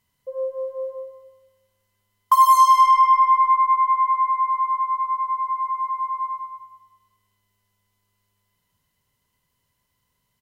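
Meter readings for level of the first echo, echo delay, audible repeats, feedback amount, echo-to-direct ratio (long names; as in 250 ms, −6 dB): −13.0 dB, 230 ms, 1, repeats not evenly spaced, −13.0 dB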